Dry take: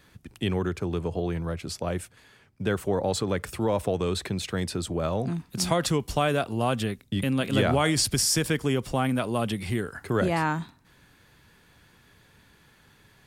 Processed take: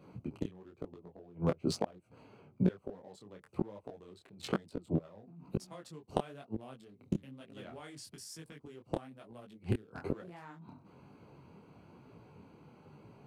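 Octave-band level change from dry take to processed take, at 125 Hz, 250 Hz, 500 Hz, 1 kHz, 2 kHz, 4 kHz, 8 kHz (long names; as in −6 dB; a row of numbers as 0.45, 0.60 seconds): −12.0, −10.5, −13.5, −16.5, −20.5, −19.5, −22.5 decibels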